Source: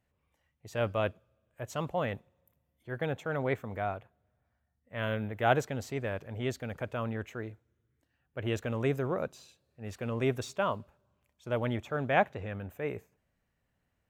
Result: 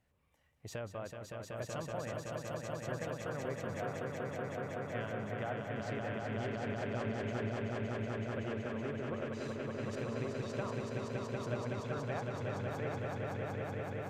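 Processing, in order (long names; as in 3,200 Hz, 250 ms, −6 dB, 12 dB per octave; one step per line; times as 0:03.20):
treble cut that deepens with the level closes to 1,900 Hz, closed at −26.5 dBFS
downward compressor 6 to 1, threshold −42 dBFS, peak gain reduction 20.5 dB
echo that builds up and dies away 188 ms, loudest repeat 5, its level −4 dB
level +1.5 dB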